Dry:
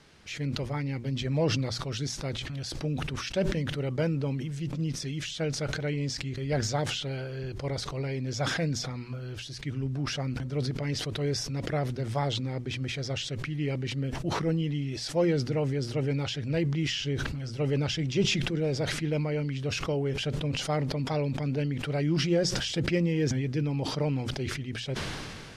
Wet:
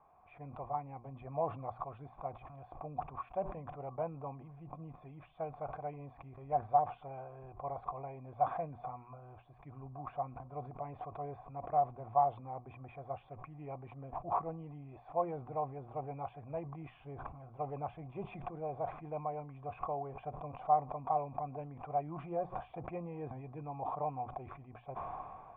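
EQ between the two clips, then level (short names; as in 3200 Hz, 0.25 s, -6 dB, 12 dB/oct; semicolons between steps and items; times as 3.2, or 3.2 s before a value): vocal tract filter a; bell 310 Hz -7 dB 2.9 oct; high shelf 3000 Hz -11.5 dB; +14.5 dB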